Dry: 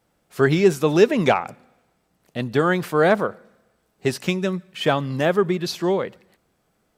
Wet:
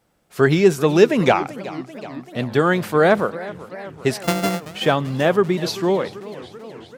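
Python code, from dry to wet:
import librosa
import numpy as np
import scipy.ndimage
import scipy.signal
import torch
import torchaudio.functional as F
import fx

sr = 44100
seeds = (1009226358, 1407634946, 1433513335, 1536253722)

y = fx.sample_sort(x, sr, block=64, at=(4.22, 4.65), fade=0.02)
y = fx.echo_warbled(y, sr, ms=381, feedback_pct=70, rate_hz=2.8, cents=213, wet_db=-17)
y = F.gain(torch.from_numpy(y), 2.0).numpy()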